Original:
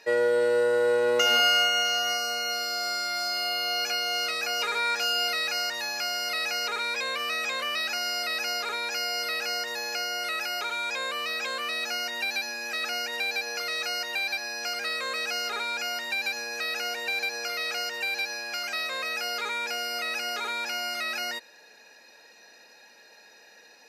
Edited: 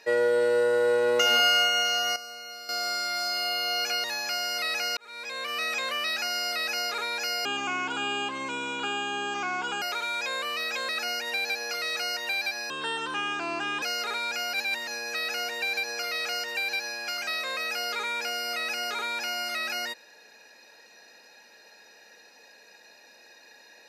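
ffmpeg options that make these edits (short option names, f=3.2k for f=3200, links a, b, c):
-filter_complex "[0:a]asplit=12[a][b][c][d][e][f][g][h][i][j][k][l];[a]atrim=end=2.162[m];[b]atrim=start=2.158:end=2.692,asetpts=PTS-STARTPTS,volume=-11.5dB[n];[c]atrim=start=2.688:end=4.042[o];[d]atrim=start=5.748:end=6.68,asetpts=PTS-STARTPTS,afade=t=out:st=0.928:d=0.004:c=hsin[p];[e]atrim=start=6.68:end=9.164,asetpts=PTS-STARTPTS,afade=t=in:d=0.66[q];[f]atrim=start=9.16:end=10.51,asetpts=PTS-STARTPTS,asetrate=25137,aresample=44100,atrim=end_sample=104447,asetpts=PTS-STARTPTS[r];[g]atrim=start=10.506:end=11.582[s];[h]atrim=start=12.748:end=14.564[t];[i]atrim=start=14.56:end=15.28,asetpts=PTS-STARTPTS,asetrate=28224,aresample=44100,atrim=end_sample=49612,asetpts=PTS-STARTPTS[u];[j]atrim=start=15.276:end=15.992[v];[k]atrim=start=15.988:end=16.332,asetpts=PTS-STARTPTS,areverse[w];[l]atrim=start=16.328[x];[m][n]acrossfade=d=0.004:c1=hsin:c2=hsin[y];[y][o]acrossfade=d=0.004:c1=hsin:c2=hsin[z];[p][q]concat=n=2:v=0:a=1[aa];[z][aa]acrossfade=d=0.004:c1=hsin:c2=hsin[ab];[ab][r]acrossfade=d=0.004:c1=hsin:c2=hsin[ac];[ac][s]acrossfade=d=0.004:c1=hsin:c2=hsin[ad];[ad][t]acrossfade=d=0.004:c1=hsin:c2=hsin[ae];[ae][u]acrossfade=d=0.004:c1=hsin:c2=hsin[af];[af][v]acrossfade=d=0.004:c1=hsin:c2=hsin[ag];[ag][w]acrossfade=d=0.004:c1=hsin:c2=hsin[ah];[ah][x]acrossfade=d=0.004:c1=hsin:c2=hsin"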